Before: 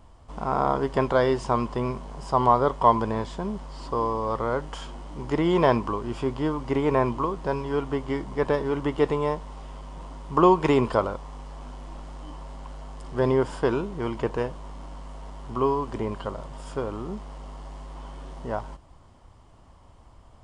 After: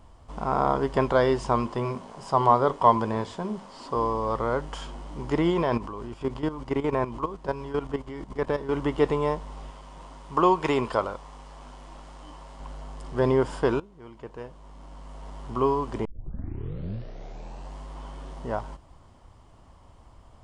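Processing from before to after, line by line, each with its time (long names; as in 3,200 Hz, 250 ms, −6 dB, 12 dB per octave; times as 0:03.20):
0:01.61–0:03.96: mains-hum notches 50/100/150/200/250/300/350/400/450/500 Hz
0:05.50–0:08.69: output level in coarse steps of 12 dB
0:09.70–0:12.60: low-shelf EQ 470 Hz −7 dB
0:13.80–0:15.36: fade in quadratic, from −18 dB
0:16.05: tape start 1.71 s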